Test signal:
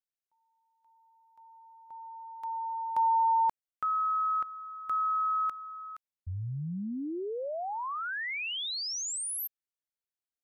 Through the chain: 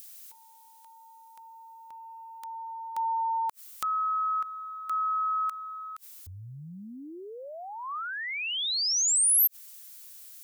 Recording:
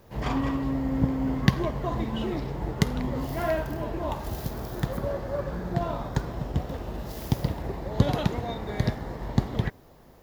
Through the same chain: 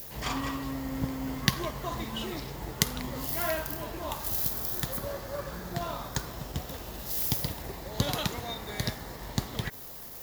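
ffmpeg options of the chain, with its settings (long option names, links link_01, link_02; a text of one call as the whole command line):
ffmpeg -i in.wav -af "acompressor=mode=upward:threshold=-36dB:ratio=2.5:attack=4.3:release=46:knee=2.83:detection=peak,adynamicequalizer=threshold=0.00891:dfrequency=1200:dqfactor=2.9:tfrequency=1200:tqfactor=2.9:attack=5:release=100:ratio=0.375:range=2:mode=boostabove:tftype=bell,crystalizer=i=8:c=0,volume=-8dB" out.wav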